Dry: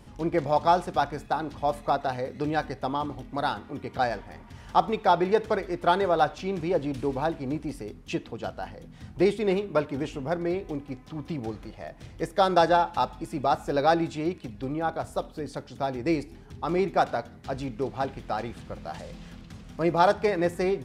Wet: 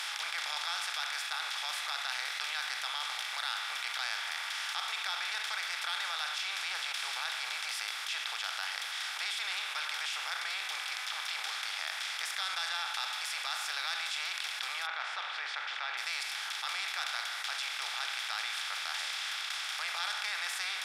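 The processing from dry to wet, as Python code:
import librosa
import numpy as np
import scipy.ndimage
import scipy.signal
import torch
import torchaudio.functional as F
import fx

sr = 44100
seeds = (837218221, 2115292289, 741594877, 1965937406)

y = fx.lowpass(x, sr, hz=2300.0, slope=24, at=(14.85, 15.97), fade=0.02)
y = fx.bin_compress(y, sr, power=0.4)
y = scipy.signal.sosfilt(scipy.signal.bessel(4, 2500.0, 'highpass', norm='mag', fs=sr, output='sos'), y)
y = fx.env_flatten(y, sr, amount_pct=70)
y = y * 10.0 ** (-4.5 / 20.0)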